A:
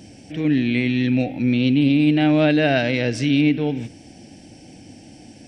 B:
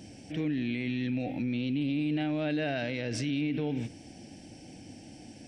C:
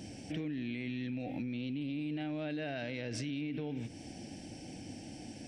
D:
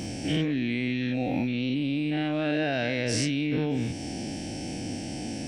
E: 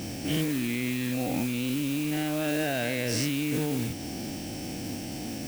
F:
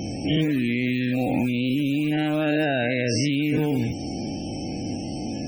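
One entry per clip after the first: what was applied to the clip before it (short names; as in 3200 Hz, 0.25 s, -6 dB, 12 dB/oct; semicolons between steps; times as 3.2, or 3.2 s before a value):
limiter -18.5 dBFS, peak gain reduction 11 dB; gain -5 dB
compressor 6:1, threshold -37 dBFS, peak gain reduction 9.5 dB; gain +1.5 dB
spectral dilation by 0.12 s; gain +8 dB
modulation noise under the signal 12 dB; gain -1.5 dB
loudest bins only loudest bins 64; gain +6 dB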